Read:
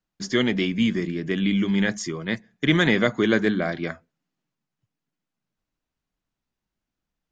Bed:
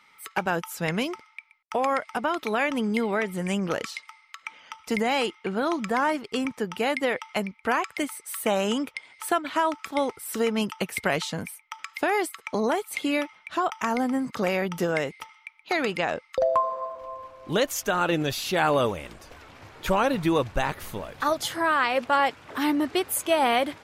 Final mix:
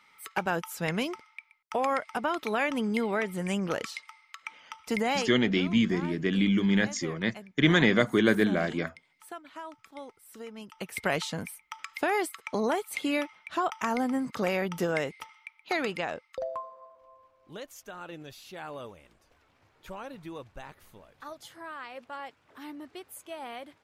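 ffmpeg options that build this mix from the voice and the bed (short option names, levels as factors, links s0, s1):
-filter_complex "[0:a]adelay=4950,volume=0.75[s0];[1:a]volume=3.98,afade=t=out:st=5.11:d=0.3:silence=0.177828,afade=t=in:st=10.67:d=0.42:silence=0.177828,afade=t=out:st=15.66:d=1.05:silence=0.16788[s1];[s0][s1]amix=inputs=2:normalize=0"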